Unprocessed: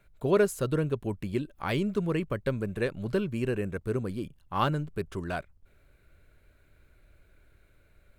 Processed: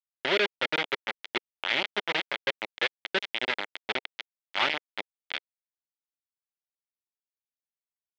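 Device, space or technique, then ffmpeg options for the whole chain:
hand-held game console: -af "acrusher=bits=3:mix=0:aa=0.000001,highpass=460,equalizer=frequency=460:width_type=q:width=4:gain=-6,equalizer=frequency=720:width_type=q:width=4:gain=-4,equalizer=frequency=1100:width_type=q:width=4:gain=-8,equalizer=frequency=2100:width_type=q:width=4:gain=7,equalizer=frequency=3300:width_type=q:width=4:gain=7,lowpass=frequency=4100:width=0.5412,lowpass=frequency=4100:width=1.3066,volume=1.5dB"

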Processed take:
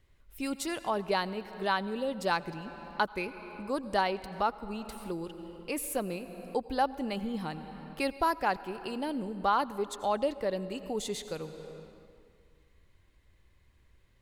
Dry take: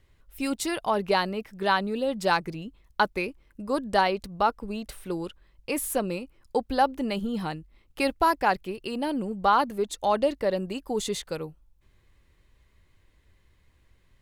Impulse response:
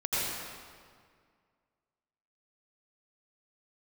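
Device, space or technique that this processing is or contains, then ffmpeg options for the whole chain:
ducked reverb: -filter_complex "[0:a]asplit=3[link_01][link_02][link_03];[1:a]atrim=start_sample=2205[link_04];[link_02][link_04]afir=irnorm=-1:irlink=0[link_05];[link_03]apad=whole_len=626925[link_06];[link_05][link_06]sidechaincompress=threshold=-38dB:ratio=8:attack=41:release=439,volume=-11dB[link_07];[link_01][link_07]amix=inputs=2:normalize=0,volume=-6dB"

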